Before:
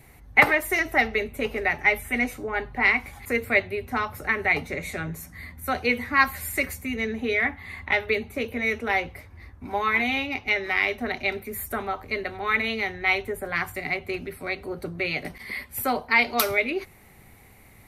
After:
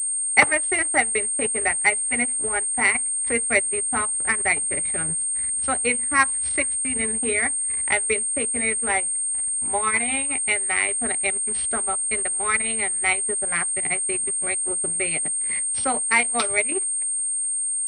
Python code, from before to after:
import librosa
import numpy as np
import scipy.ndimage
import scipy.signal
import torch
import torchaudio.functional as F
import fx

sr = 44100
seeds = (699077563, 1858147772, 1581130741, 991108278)

p1 = fx.hum_notches(x, sr, base_hz=50, count=5)
p2 = p1 + fx.echo_feedback(p1, sr, ms=429, feedback_pct=40, wet_db=-24, dry=0)
p3 = np.sign(p2) * np.maximum(np.abs(p2) - 10.0 ** (-42.5 / 20.0), 0.0)
p4 = fx.transient(p3, sr, attack_db=2, sustain_db=-11)
y = fx.pwm(p4, sr, carrier_hz=8600.0)